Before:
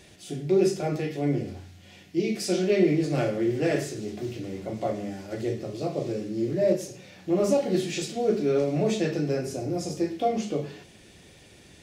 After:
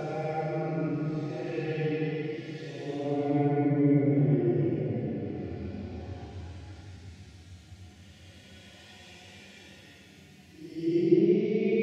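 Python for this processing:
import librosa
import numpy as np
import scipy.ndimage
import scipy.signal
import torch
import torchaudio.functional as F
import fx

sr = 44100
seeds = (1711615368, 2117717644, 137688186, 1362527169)

y = fx.fade_in_head(x, sr, length_s=1.39)
y = fx.env_lowpass_down(y, sr, base_hz=2100.0, full_db=-24.5)
y = fx.paulstretch(y, sr, seeds[0], factor=8.1, window_s=0.1, from_s=0.81)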